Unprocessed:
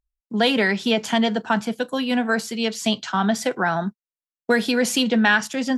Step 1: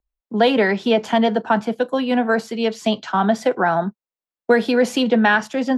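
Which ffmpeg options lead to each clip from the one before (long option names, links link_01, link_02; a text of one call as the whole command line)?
ffmpeg -i in.wav -filter_complex "[0:a]equalizer=frequency=10000:width_type=o:width=1.8:gain=-10,acrossover=split=330|990[link_01][link_02][link_03];[link_02]acontrast=89[link_04];[link_01][link_04][link_03]amix=inputs=3:normalize=0" out.wav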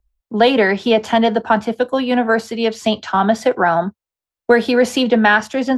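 ffmpeg -i in.wav -af "lowshelf=frequency=110:width_type=q:width=1.5:gain=10,volume=3.5dB" out.wav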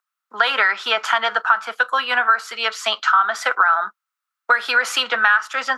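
ffmpeg -i in.wav -filter_complex "[0:a]highpass=frequency=1300:width_type=q:width=7.4,asplit=2[link_01][link_02];[link_02]alimiter=limit=-5dB:level=0:latency=1:release=166,volume=2.5dB[link_03];[link_01][link_03]amix=inputs=2:normalize=0,acompressor=threshold=-8dB:ratio=4,volume=-5dB" out.wav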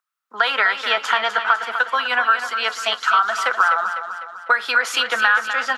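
ffmpeg -i in.wav -af "aecho=1:1:251|502|753|1004|1255|1506:0.355|0.174|0.0852|0.0417|0.0205|0.01,volume=-1dB" out.wav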